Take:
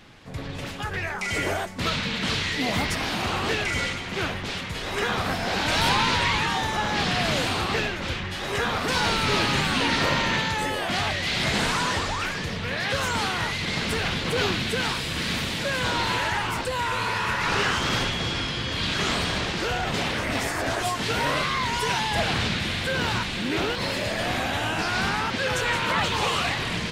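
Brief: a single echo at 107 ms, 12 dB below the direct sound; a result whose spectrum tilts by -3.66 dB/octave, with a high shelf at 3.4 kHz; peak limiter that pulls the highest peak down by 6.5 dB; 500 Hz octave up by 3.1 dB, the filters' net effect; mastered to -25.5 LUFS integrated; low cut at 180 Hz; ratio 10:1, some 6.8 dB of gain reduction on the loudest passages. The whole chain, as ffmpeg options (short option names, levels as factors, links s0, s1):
-af "highpass=180,equalizer=f=500:t=o:g=4,highshelf=f=3400:g=-6,acompressor=threshold=0.0501:ratio=10,alimiter=limit=0.075:level=0:latency=1,aecho=1:1:107:0.251,volume=1.88"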